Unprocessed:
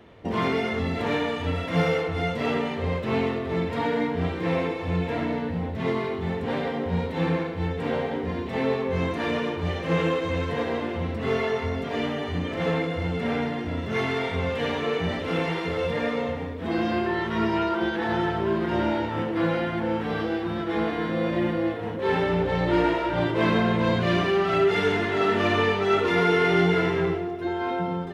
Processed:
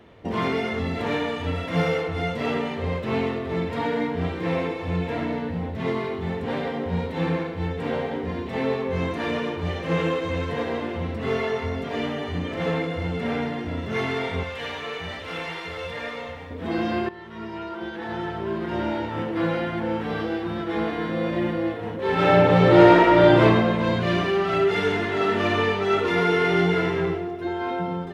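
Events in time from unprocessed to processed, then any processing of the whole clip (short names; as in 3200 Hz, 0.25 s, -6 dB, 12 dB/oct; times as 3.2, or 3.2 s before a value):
14.43–16.51 bell 230 Hz -12.5 dB 2.8 oct
17.09–19.39 fade in, from -16 dB
22.14–23.41 reverb throw, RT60 1 s, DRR -8 dB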